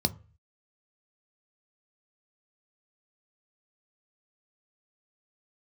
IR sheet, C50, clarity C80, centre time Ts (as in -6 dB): 21.0 dB, 26.0 dB, 4 ms